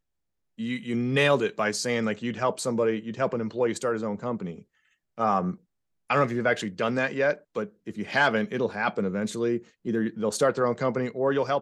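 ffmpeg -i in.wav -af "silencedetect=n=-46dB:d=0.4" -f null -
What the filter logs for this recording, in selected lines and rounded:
silence_start: 0.00
silence_end: 0.58 | silence_duration: 0.58
silence_start: 4.62
silence_end: 5.18 | silence_duration: 0.56
silence_start: 5.56
silence_end: 6.10 | silence_duration: 0.54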